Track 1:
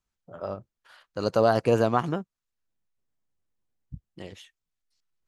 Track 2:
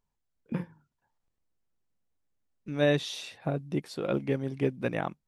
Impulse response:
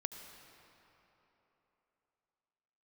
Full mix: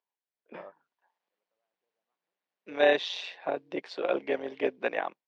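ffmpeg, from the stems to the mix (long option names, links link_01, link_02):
-filter_complex "[0:a]lowpass=1700,acompressor=threshold=-30dB:ratio=2.5,adelay=150,volume=-13dB[link_01];[1:a]acrossover=split=220 7200:gain=0.224 1 0.141[link_02][link_03][link_04];[link_02][link_03][link_04]amix=inputs=3:normalize=0,tremolo=f=180:d=0.621,equalizer=frequency=1300:width=7:gain=-6.5,volume=-0.5dB,asplit=2[link_05][link_06];[link_06]apad=whole_len=239319[link_07];[link_01][link_07]sidechaingate=range=-51dB:threshold=-50dB:ratio=16:detection=peak[link_08];[link_08][link_05]amix=inputs=2:normalize=0,dynaudnorm=framelen=310:gausssize=5:maxgain=9.5dB,highpass=500,lowpass=3700"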